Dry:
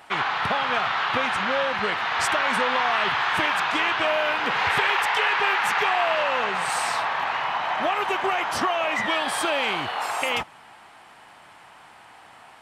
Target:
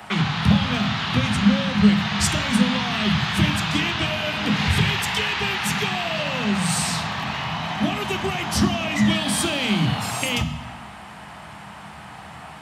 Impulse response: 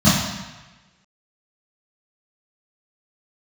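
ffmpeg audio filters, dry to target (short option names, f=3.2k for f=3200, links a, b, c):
-filter_complex "[0:a]asplit=2[a][b];[b]lowshelf=f=160:g=10[c];[1:a]atrim=start_sample=2205,lowshelf=f=84:g=7.5,highshelf=f=9.2k:g=9[d];[c][d]afir=irnorm=-1:irlink=0,volume=-31.5dB[e];[a][e]amix=inputs=2:normalize=0,acrossover=split=320|3000[f][g][h];[g]acompressor=threshold=-38dB:ratio=5[i];[f][i][h]amix=inputs=3:normalize=0,volume=7.5dB"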